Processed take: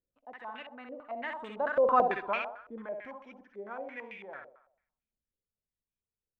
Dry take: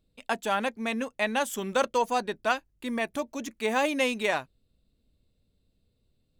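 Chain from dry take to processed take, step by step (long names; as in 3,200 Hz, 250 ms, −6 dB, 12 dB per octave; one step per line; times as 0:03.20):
source passing by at 0:01.98, 31 m/s, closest 3.4 metres
in parallel at +0.5 dB: downward compressor, threshold −41 dBFS, peak gain reduction 17.5 dB
on the sum: feedback echo with a high-pass in the loop 64 ms, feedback 53%, high-pass 280 Hz, level −4 dB
low-pass on a step sequencer 9 Hz 510–2,500 Hz
level −4 dB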